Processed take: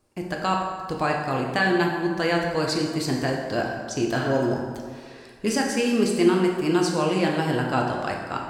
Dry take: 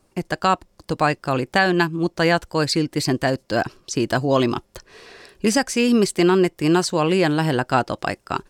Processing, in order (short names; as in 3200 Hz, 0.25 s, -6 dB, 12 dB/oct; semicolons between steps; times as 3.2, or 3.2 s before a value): spectral repair 4.18–4.56, 1000–4900 Hz both; plate-style reverb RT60 1.8 s, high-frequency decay 0.6×, DRR -0.5 dB; gain -7 dB